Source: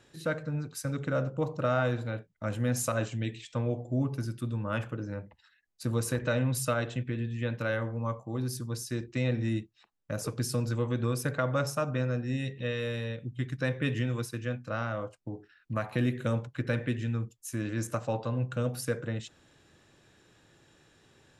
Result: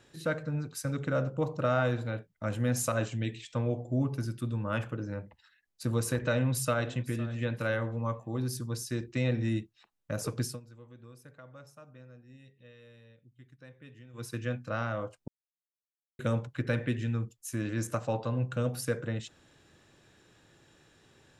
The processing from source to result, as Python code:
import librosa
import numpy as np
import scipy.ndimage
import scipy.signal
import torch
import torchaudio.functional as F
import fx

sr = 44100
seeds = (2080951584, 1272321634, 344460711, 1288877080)

y = fx.echo_throw(x, sr, start_s=6.25, length_s=1.02, ms=510, feedback_pct=25, wet_db=-17.5)
y = fx.edit(y, sr, fx.fade_down_up(start_s=10.41, length_s=3.91, db=-22.0, fade_s=0.19),
    fx.silence(start_s=15.28, length_s=0.91), tone=tone)